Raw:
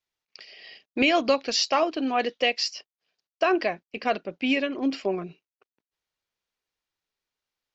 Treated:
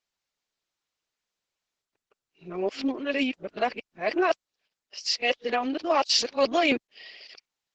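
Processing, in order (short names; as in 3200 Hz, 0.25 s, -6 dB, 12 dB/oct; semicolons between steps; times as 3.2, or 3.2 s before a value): whole clip reversed; low shelf 140 Hz -10.5 dB; Opus 10 kbps 48000 Hz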